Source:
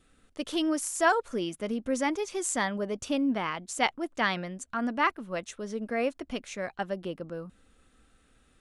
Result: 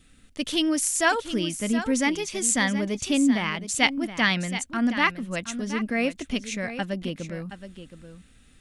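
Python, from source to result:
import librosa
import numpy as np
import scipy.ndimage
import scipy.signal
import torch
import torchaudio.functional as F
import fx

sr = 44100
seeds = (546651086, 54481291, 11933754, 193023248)

y = fx.band_shelf(x, sr, hz=710.0, db=-8.5, octaves=2.4)
y = y + 10.0 ** (-11.5 / 20.0) * np.pad(y, (int(721 * sr / 1000.0), 0))[:len(y)]
y = y * 10.0 ** (8.5 / 20.0)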